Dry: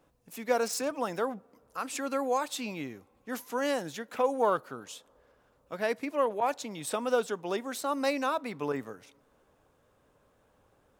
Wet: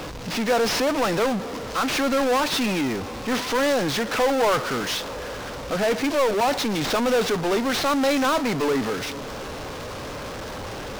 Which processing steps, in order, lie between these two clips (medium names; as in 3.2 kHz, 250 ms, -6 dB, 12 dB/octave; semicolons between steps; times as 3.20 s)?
CVSD coder 32 kbps; power-law waveshaper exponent 0.35